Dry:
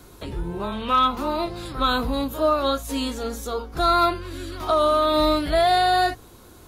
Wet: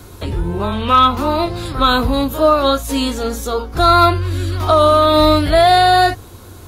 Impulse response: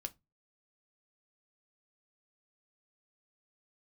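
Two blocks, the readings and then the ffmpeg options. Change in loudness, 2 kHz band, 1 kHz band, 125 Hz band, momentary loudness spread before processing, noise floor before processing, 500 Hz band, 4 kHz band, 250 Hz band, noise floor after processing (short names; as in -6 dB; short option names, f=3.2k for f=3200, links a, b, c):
+8.0 dB, +8.0 dB, +8.0 dB, +14.5 dB, 13 LU, -47 dBFS, +8.0 dB, +8.0 dB, +8.0 dB, -38 dBFS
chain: -af "equalizer=f=92:t=o:w=0.35:g=12.5,volume=8dB"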